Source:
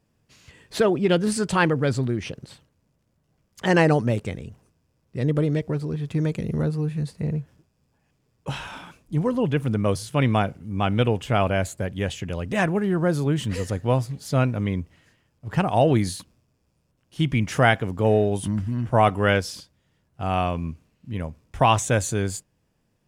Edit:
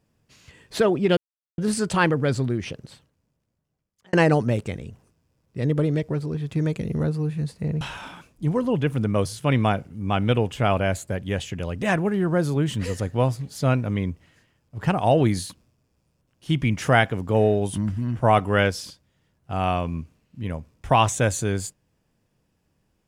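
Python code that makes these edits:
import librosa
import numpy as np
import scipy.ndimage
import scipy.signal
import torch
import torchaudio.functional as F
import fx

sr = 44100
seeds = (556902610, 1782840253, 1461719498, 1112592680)

y = fx.edit(x, sr, fx.insert_silence(at_s=1.17, length_s=0.41),
    fx.fade_out_span(start_s=2.26, length_s=1.46),
    fx.cut(start_s=7.4, length_s=1.11), tone=tone)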